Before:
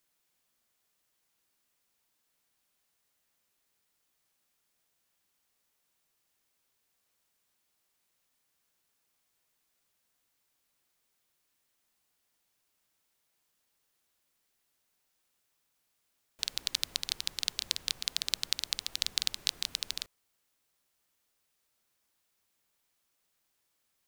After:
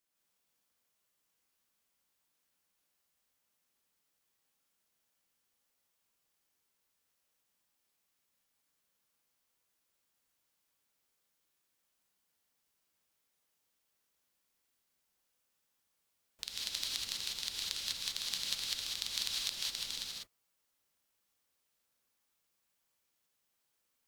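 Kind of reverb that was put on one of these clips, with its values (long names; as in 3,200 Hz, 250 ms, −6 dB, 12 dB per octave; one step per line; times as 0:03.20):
reverb whose tail is shaped and stops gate 220 ms rising, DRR −4 dB
level −8.5 dB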